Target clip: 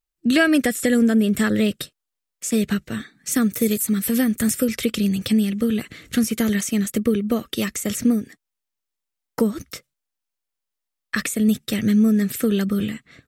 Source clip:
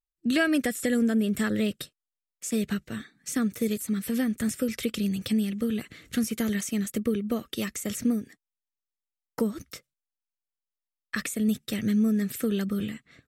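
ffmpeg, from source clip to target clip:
-filter_complex "[0:a]asettb=1/sr,asplit=3[s0][s1][s2];[s0]atrim=end=3.314[s3];[s1]atrim=start=3.31:end=4.65,asetpts=PTS-STARTPTS,afade=t=in:d=0.004:c=qsin,afade=t=out:st=1.336:d=0.004:c=qsin,highshelf=f=9700:g=10.5[s4];[s2]atrim=start=4.646[s5];[s3][s4]acrossfade=d=0.004:c1=hsin:c2=qsin[s6];[s6][s5]acrossfade=d=0.004:c1=qsin:c2=hsin,volume=2.24"

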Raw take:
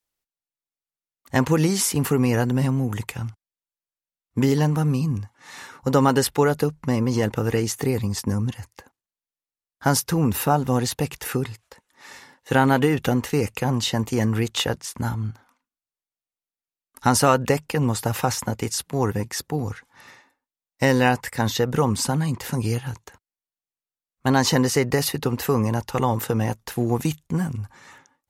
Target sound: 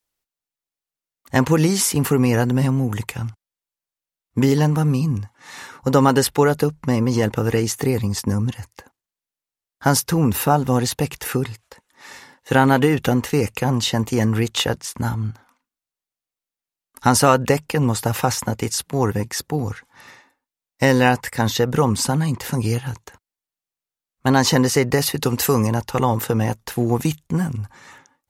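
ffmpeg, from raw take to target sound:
-filter_complex "[0:a]asettb=1/sr,asplit=3[s0][s1][s2];[s0]atrim=end=25.174[s3];[s1]atrim=start=25.17:end=25.67,asetpts=PTS-STARTPTS,afade=t=in:d=0.004:c=qsin,afade=t=out:st=0.496:d=0.004:c=qsin,equalizer=f=8400:t=o:w=2.1:g=9.5[s4];[s2]atrim=start=25.666[s5];[s3][s4]acrossfade=d=0.004:c1=hsin:c2=qsin[s6];[s6][s5]acrossfade=d=0.004:c1=qsin:c2=hsin,volume=1.41"

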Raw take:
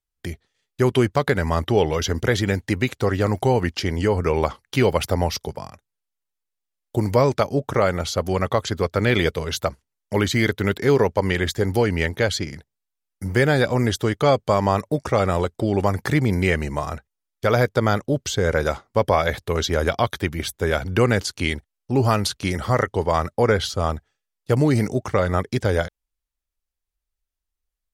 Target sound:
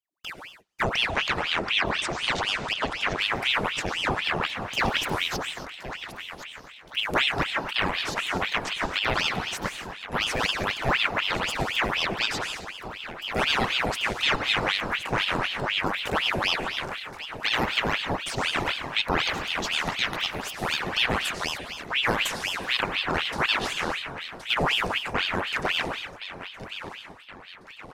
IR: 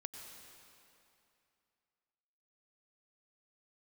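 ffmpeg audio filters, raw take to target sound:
-filter_complex "[0:a]asettb=1/sr,asplit=3[s0][s1][s2];[s0]atrim=end=0.834[s3];[s1]atrim=start=0.83:end=3.18,asetpts=PTS-STARTPTS,afade=t=in:d=0.004:c=qsin,afade=t=out:st=2.346:d=0.004:c=qsin,lowpass=f=8300:w=0.5412,lowpass=f=8300:w=1.3066[s4];[s2]atrim=start=3.176[s5];[s3][s4]acrossfade=d=0.004:c1=hsin:c2=qsin[s6];[s6][s5]acrossfade=d=0.004:c1=qsin:c2=hsin,aecho=1:1:1071|2142|3213|4284|5355:0.251|0.118|0.0555|0.0261|0.0123[s7];[1:a]atrim=start_sample=2205,afade=t=out:st=0.34:d=0.01,atrim=end_sample=15435[s8];[s7][s8]afir=irnorm=-1:irlink=0,aeval=exprs='val(0)*sin(2*PI*1700*n/s+1700*0.85/4*sin(2*PI*4*n/s))':c=same"

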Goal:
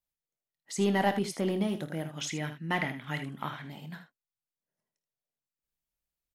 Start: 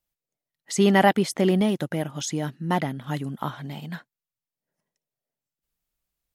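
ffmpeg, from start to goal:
-filter_complex "[0:a]asoftclip=type=tanh:threshold=0.335,asettb=1/sr,asplit=3[s0][s1][s2];[s0]atrim=end=2.174[s3];[s1]atrim=start=2.17:end=3.64,asetpts=PTS-STARTPTS,afade=t=in:d=0.004:c=qsin,afade=t=out:st=1.466:d=0.004:c=qsin,equalizer=f=2200:w=1.3:g=13.5[s4];[s2]atrim=start=3.636[s5];[s3][s4]acrossfade=d=0.004:c1=hsin:c2=qsin[s6];[s6][s5]acrossfade=d=0.004:c1=qsin:c2=hsin,asplit=2[s7][s8];[s8]aecho=0:1:25|52|79:0.251|0.168|0.282[s9];[s7][s9]amix=inputs=2:normalize=0,volume=0.376"

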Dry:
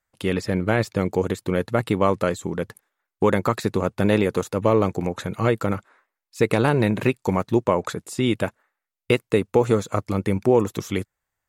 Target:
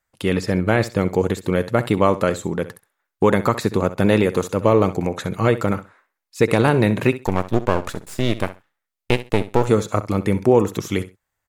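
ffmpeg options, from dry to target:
-filter_complex "[0:a]asettb=1/sr,asplit=3[s0][s1][s2];[s0]atrim=end=7.264[s3];[s1]atrim=start=7.26:end=9.67,asetpts=PTS-STARTPTS,afade=t=in:d=0.004:c=qsin,afade=t=out:st=2.406:d=0.004:c=qsin,aeval=exprs='max(val(0),0)':c=same[s4];[s2]atrim=start=9.666[s5];[s3][s4]acrossfade=d=0.004:c1=hsin:c2=qsin[s6];[s6][s5]acrossfade=d=0.004:c1=qsin:c2=hsin,aecho=1:1:65|130:0.178|0.032,volume=1.41"

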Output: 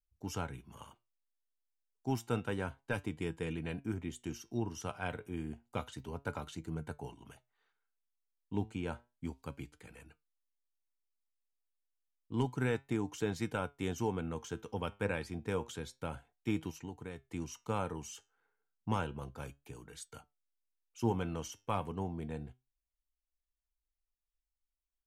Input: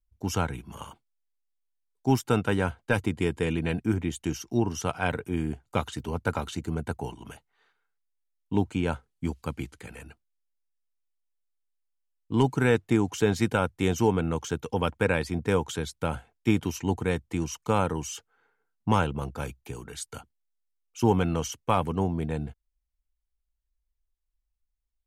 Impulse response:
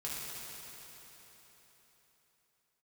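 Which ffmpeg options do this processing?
-filter_complex "[0:a]asplit=3[s0][s1][s2];[s0]afade=t=out:st=16.7:d=0.02[s3];[s1]acompressor=threshold=0.0355:ratio=6,afade=t=in:st=16.7:d=0.02,afade=t=out:st=17.22:d=0.02[s4];[s2]afade=t=in:st=17.22:d=0.02[s5];[s3][s4][s5]amix=inputs=3:normalize=0,flanger=delay=6.1:depth=3.9:regen=80:speed=0.3:shape=triangular,volume=0.473"

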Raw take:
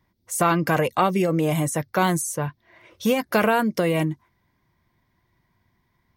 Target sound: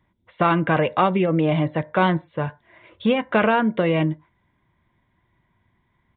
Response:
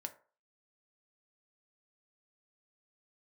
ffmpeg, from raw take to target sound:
-filter_complex "[0:a]asplit=2[s0][s1];[1:a]atrim=start_sample=2205,atrim=end_sample=6615[s2];[s1][s2]afir=irnorm=-1:irlink=0,volume=0.631[s3];[s0][s3]amix=inputs=2:normalize=0,aresample=8000,aresample=44100,volume=0.841"

